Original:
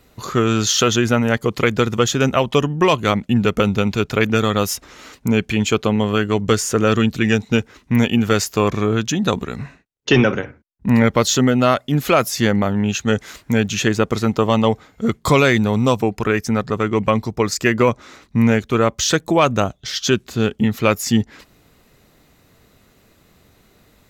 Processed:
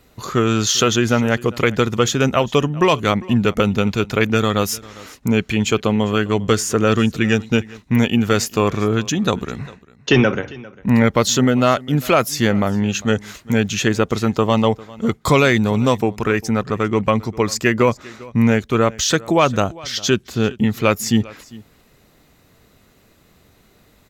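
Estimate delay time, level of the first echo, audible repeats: 400 ms, −21.5 dB, 1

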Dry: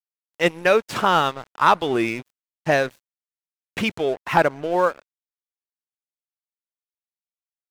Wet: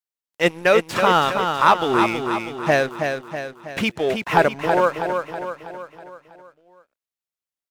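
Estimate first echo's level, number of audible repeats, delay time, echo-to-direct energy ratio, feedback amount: −6.0 dB, 6, 323 ms, −4.5 dB, 52%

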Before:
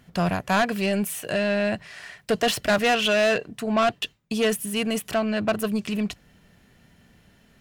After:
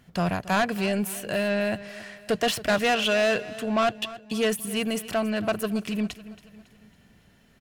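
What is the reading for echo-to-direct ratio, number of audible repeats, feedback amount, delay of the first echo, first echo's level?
−16.0 dB, 3, 46%, 277 ms, −17.0 dB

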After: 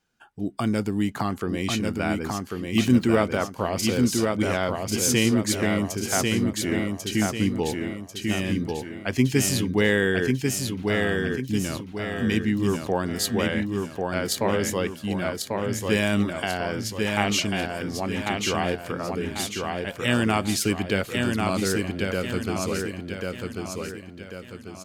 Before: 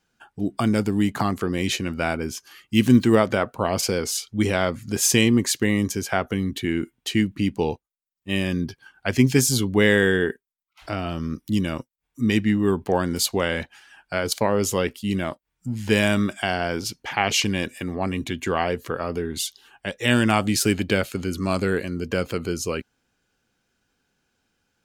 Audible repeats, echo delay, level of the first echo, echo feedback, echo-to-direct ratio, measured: 5, 1,093 ms, −3.5 dB, 43%, −2.5 dB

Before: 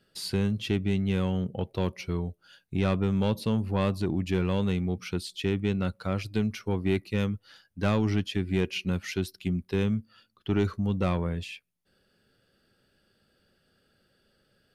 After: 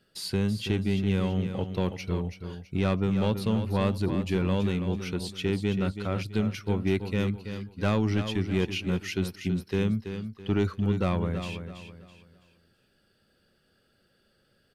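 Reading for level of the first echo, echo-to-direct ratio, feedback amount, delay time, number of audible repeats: −9.0 dB, −8.5 dB, 34%, 329 ms, 3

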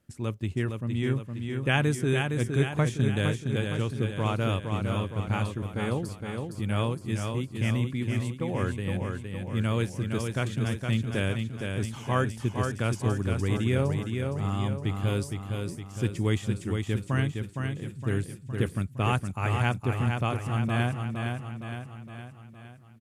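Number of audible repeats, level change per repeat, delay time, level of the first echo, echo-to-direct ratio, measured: 6, −5.5 dB, 463 ms, −5.0 dB, −3.5 dB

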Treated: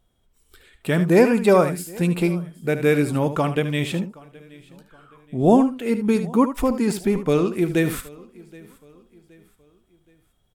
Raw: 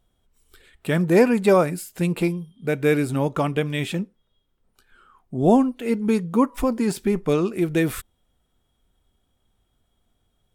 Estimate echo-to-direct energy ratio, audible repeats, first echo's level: −10.5 dB, 4, −11.0 dB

